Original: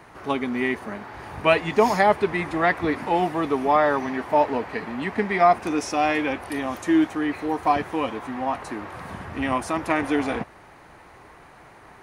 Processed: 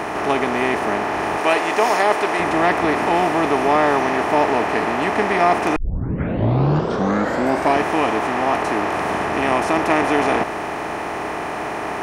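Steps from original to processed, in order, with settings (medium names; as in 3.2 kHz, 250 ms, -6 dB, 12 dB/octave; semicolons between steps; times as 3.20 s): spectral levelling over time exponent 0.4; 1.37–2.40 s: tone controls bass -13 dB, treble +3 dB; 5.76 s: tape start 2.04 s; trim -2.5 dB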